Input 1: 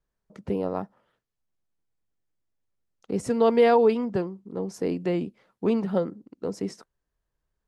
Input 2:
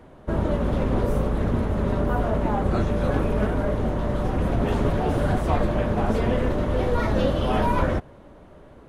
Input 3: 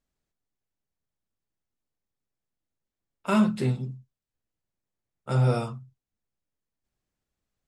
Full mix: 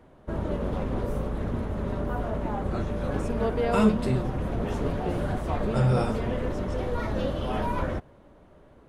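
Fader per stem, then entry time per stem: −9.0, −6.5, −1.0 decibels; 0.00, 0.00, 0.45 seconds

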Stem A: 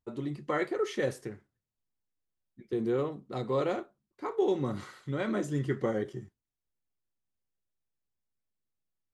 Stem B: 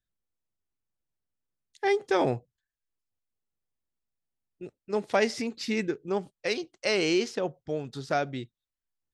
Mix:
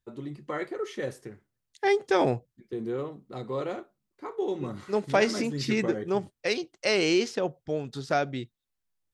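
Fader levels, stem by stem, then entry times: −2.5, +1.5 decibels; 0.00, 0.00 seconds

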